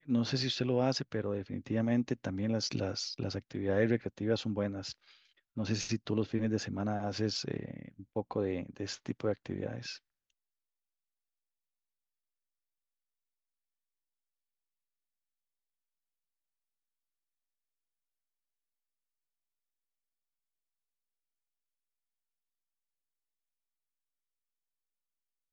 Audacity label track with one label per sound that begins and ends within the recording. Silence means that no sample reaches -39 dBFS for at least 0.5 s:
5.570000	9.940000	sound